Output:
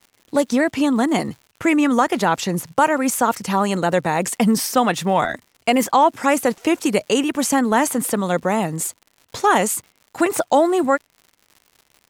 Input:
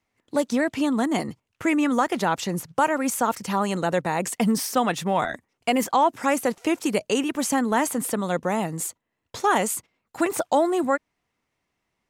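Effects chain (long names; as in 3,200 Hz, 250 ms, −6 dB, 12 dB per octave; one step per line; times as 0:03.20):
surface crackle 150 per second −42 dBFS
tape wow and flutter 24 cents
level +5 dB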